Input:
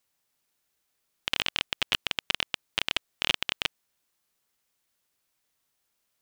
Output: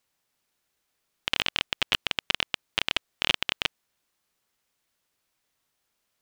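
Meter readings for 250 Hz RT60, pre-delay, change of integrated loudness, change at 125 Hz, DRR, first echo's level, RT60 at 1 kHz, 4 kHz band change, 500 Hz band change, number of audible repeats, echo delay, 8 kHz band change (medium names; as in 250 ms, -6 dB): no reverb, no reverb, +1.5 dB, +2.5 dB, no reverb, no echo, no reverb, +1.5 dB, +2.5 dB, no echo, no echo, -0.5 dB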